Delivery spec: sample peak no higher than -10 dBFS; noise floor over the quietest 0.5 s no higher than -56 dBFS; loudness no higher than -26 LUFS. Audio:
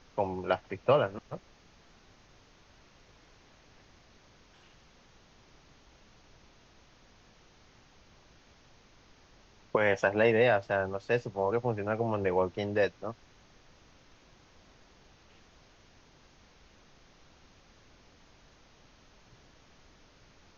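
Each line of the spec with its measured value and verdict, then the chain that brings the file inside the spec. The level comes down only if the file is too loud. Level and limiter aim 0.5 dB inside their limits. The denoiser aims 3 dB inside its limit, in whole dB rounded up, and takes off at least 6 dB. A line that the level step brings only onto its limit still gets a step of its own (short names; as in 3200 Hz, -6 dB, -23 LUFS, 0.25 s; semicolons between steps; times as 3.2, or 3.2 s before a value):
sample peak -11.5 dBFS: OK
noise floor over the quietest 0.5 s -60 dBFS: OK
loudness -29.5 LUFS: OK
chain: none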